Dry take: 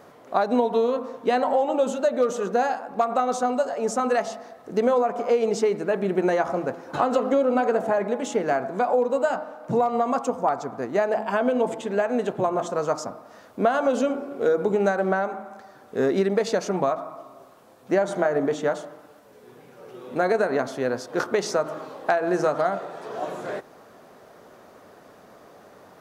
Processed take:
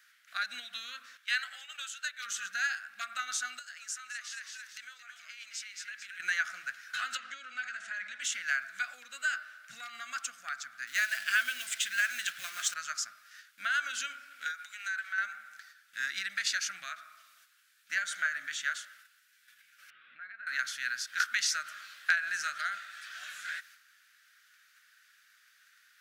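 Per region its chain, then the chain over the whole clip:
1.17–2.26 gate -26 dBFS, range -6 dB + HPF 930 Hz
3.59–6.2 HPF 1100 Hz 6 dB/oct + frequency-shifting echo 0.222 s, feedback 40%, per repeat -84 Hz, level -8 dB + compressor 3:1, threshold -37 dBFS
7.17–8.21 LPF 7900 Hz 24 dB/oct + compressor, threshold -22 dBFS
10.87–12.74 G.711 law mismatch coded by mu + high shelf 2900 Hz +7.5 dB
14.51–15.18 HPF 840 Hz + compressor 2.5:1, threshold -31 dBFS
19.9–20.47 compressor, threshold -32 dBFS + Gaussian blur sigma 3.3 samples
whole clip: gate -47 dBFS, range -7 dB; elliptic high-pass 1500 Hz, stop band 40 dB; gain +4 dB

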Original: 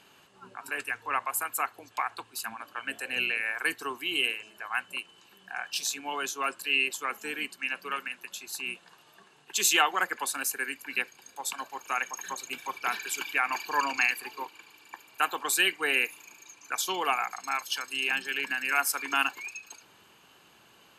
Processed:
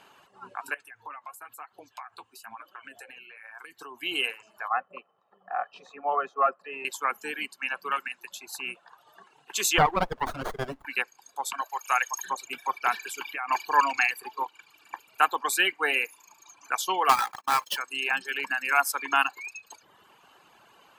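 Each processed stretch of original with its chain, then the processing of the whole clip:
0.74–4.03 compressor 12:1, threshold -38 dBFS + flange 1 Hz, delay 5 ms, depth 7 ms, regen +46%
4.68–6.85 comb 1.6 ms, depth 74% + sample leveller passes 1 + Butterworth band-pass 480 Hz, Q 0.52
9.78–10.85 low shelf 500 Hz +10.5 dB + running maximum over 17 samples
11.61–12.25 HPF 510 Hz + high shelf 3900 Hz +9.5 dB
12.97–13.48 compressor 8:1, threshold -31 dBFS + doubler 12 ms -12 dB
17.09–17.77 half-waves squared off + notch comb 720 Hz + gate -41 dBFS, range -25 dB
whole clip: reverb removal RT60 0.89 s; bell 910 Hz +9.5 dB 2 oct; gain -2 dB

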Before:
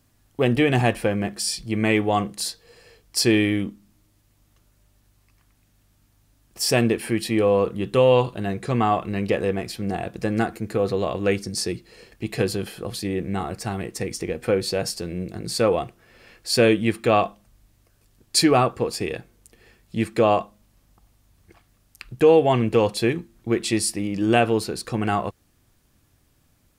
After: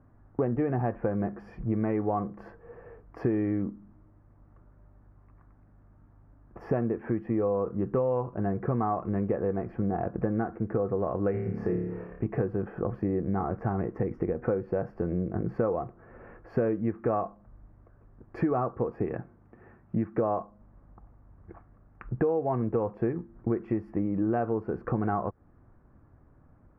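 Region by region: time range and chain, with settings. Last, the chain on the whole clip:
11.31–12.26 bell 300 Hz -5 dB 0.85 oct + flutter echo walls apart 4.8 m, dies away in 0.66 s
19.05–20.17 HPF 81 Hz + bell 470 Hz -7 dB 0.42 oct
whole clip: inverse Chebyshev low-pass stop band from 3600 Hz, stop band 50 dB; compressor 6:1, threshold -31 dBFS; gain +5.5 dB

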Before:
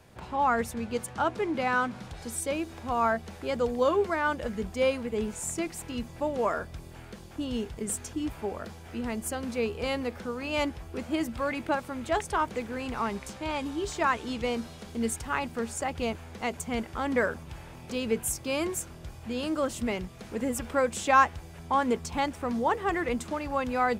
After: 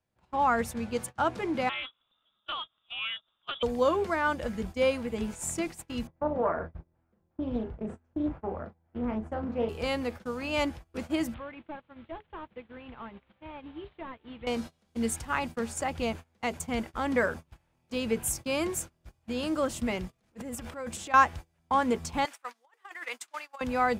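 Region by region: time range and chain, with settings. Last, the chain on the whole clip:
1.69–3.63 inverted band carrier 3600 Hz + resonant high shelf 1600 Hz -6.5 dB, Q 3 + Doppler distortion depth 0.14 ms
6.07–9.69 LPF 1200 Hz + doubler 37 ms -6 dB + Doppler distortion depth 0.37 ms
11.34–14.47 delta modulation 32 kbps, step -40 dBFS + steep low-pass 3500 Hz 48 dB/oct + compressor 5:1, threshold -35 dBFS
20.08–21.14 transient shaper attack -8 dB, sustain +11 dB + compressor 5:1, threshold -34 dBFS
22.25–23.61 HPF 1200 Hz + negative-ratio compressor -37 dBFS
whole clip: gate -37 dBFS, range -27 dB; notch 420 Hz, Q 12

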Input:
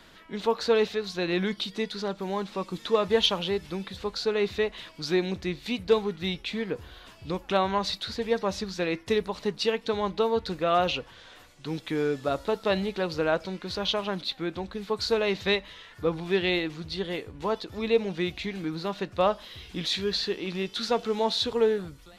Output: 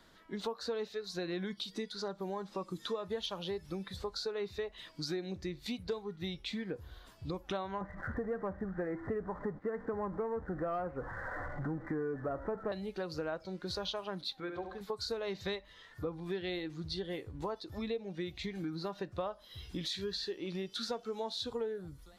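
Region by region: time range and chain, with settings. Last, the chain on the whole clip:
7.81–12.72 zero-crossing step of -34 dBFS + steep low-pass 2000 Hz 72 dB/oct + sample leveller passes 1
14.4–14.81 tone controls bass -10 dB, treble -9 dB + notch 330 Hz, Q 8.7 + flutter echo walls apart 11.8 m, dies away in 0.61 s
whole clip: spectral noise reduction 8 dB; bell 2600 Hz -7.5 dB 0.59 oct; compressor 5:1, threshold -36 dBFS

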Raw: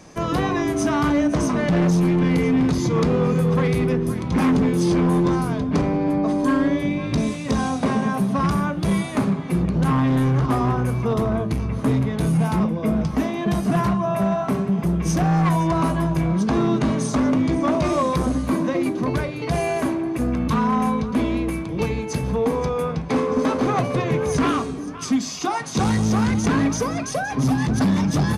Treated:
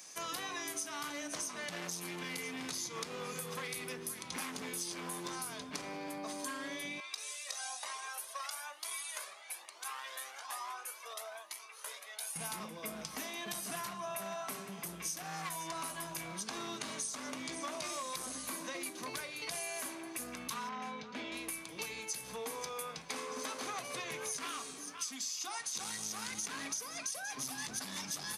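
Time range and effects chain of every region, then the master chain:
7–12.36 HPF 550 Hz 24 dB/oct + cascading flanger rising 1.1 Hz
20.69–21.32 HPF 99 Hz + air absorption 170 m + notch 1100 Hz, Q 5.9
whole clip: differentiator; compressor 6:1, threshold -41 dBFS; gain +4 dB

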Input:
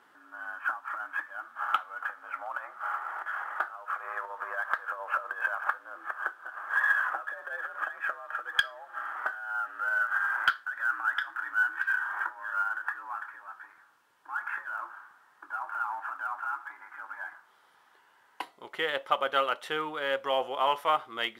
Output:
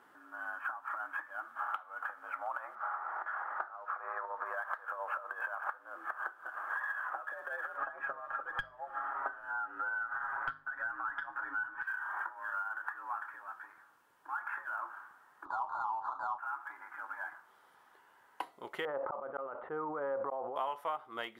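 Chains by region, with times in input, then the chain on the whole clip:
2.75–4.46 running mean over 5 samples + bell 3000 Hz -5.5 dB 0.8 oct
7.77–11.83 tilt -3.5 dB/oct + notches 50/100/150/200/250/300/350 Hz + comb 7.3 ms, depth 94%
15.45–16.38 half-waves squared off + LPF 3700 Hz + resonant high shelf 1500 Hz -13 dB, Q 3
18.85–20.56 LPF 1300 Hz 24 dB/oct + auto swell 0.616 s + sustainer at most 41 dB/s
whole clip: dynamic EQ 860 Hz, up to +5 dB, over -39 dBFS, Q 0.88; compressor 6:1, threshold -34 dBFS; bell 3800 Hz -6.5 dB 2.3 oct; gain +1 dB

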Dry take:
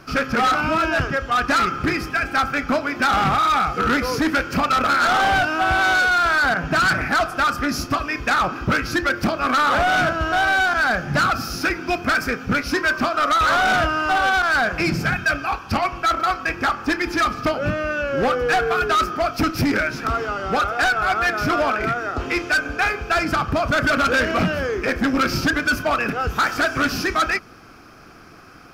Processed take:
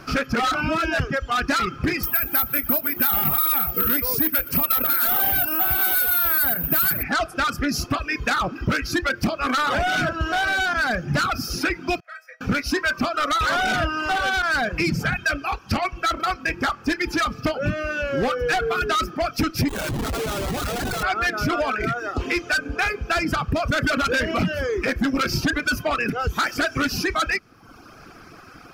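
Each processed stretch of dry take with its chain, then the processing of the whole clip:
2.03–7.03 echo 0.121 s -14 dB + careless resampling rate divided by 3×, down none, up zero stuff
12–12.41 rippled Chebyshev high-pass 490 Hz, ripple 9 dB + resonator 640 Hz, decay 0.36 s, mix 90%
19.68–21.03 high shelf 2000 Hz -5 dB + negative-ratio compressor -25 dBFS + Schmitt trigger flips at -26 dBFS
whole clip: reverb removal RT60 0.82 s; dynamic EQ 1000 Hz, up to -5 dB, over -32 dBFS, Q 0.83; compressor 2.5:1, threshold -22 dBFS; gain +2.5 dB

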